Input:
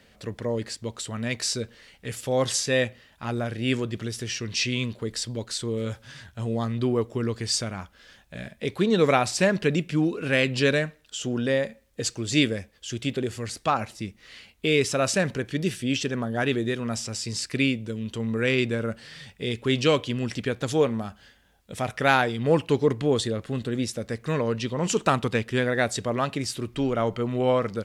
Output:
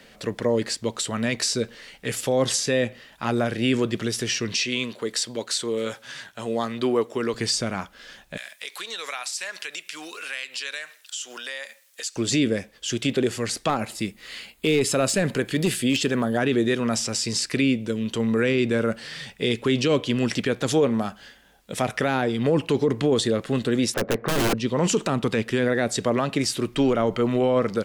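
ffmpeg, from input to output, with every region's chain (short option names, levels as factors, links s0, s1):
-filter_complex "[0:a]asettb=1/sr,asplit=3[s0][s1][s2];[s0]atrim=end=4.584[s3];[s1]atrim=start=4.58:end=7.34,asetpts=PTS-STARTPTS,afade=t=in:d=0.004:c=qsin,afade=t=out:st=2.756:d=0.004:c=qsin,highpass=f=440:p=1,bandreject=f=5000:w=24[s4];[s2]atrim=start=7.336[s5];[s3][s4]acrossfade=d=0.004:c1=hsin:c2=qsin[s6];[s6][s5]acrossfade=d=0.004:c1=qsin:c2=hsin,asettb=1/sr,asplit=3[s7][s8][s9];[s7]atrim=end=8.374[s10];[s8]atrim=start=8.37:end=12.16,asetpts=PTS-STARTPTS,afade=t=in:d=0.004:c=qsin,afade=t=out:st=3.786:d=0.004:c=qsin,highpass=1200,highshelf=f=4400:g=9.5,acompressor=threshold=0.01:ratio=3:attack=3.2:release=140:knee=1:detection=peak[s11];[s9]atrim=start=12.156[s12];[s10][s11]acrossfade=d=0.004:c1=hsin:c2=qsin[s13];[s13][s12]acrossfade=d=0.004:c1=qsin:c2=hsin,asettb=1/sr,asplit=3[s14][s15][s16];[s14]atrim=end=13.694[s17];[s15]atrim=start=13.69:end=16.38,asetpts=PTS-STARTPTS,afade=t=in:d=0.004:c=qsin,afade=t=out:st=2.686:d=0.004:c=qsin,aeval=exprs='clip(val(0),-1,0.119)':c=same,highshelf=f=7100:g=7.5,bandreject=f=5800:w=6.3[s18];[s16]atrim=start=16.376[s19];[s17][s18]acrossfade=d=0.004:c1=hsin:c2=qsin[s20];[s20][s19]acrossfade=d=0.004:c1=qsin:c2=hsin,asettb=1/sr,asplit=3[s21][s22][s23];[s21]atrim=end=23.944[s24];[s22]atrim=start=23.94:end=24.54,asetpts=PTS-STARTPTS,afade=t=in:d=0.004:c=qsin,afade=t=out:st=0.596:d=0.004:c=qsin,lowpass=2100,equalizer=f=760:t=o:w=2.6:g=14.5,aeval=exprs='(mod(4.73*val(0)+1,2)-1)/4.73':c=same[s25];[s23]atrim=start=24.536[s26];[s24][s25]acrossfade=d=0.004:c1=hsin:c2=qsin[s27];[s27][s26]acrossfade=d=0.004:c1=qsin:c2=hsin,equalizer=f=77:w=1.2:g=-14,acrossover=split=460[s28][s29];[s29]acompressor=threshold=0.0355:ratio=6[s30];[s28][s30]amix=inputs=2:normalize=0,alimiter=limit=0.106:level=0:latency=1:release=18,volume=2.37"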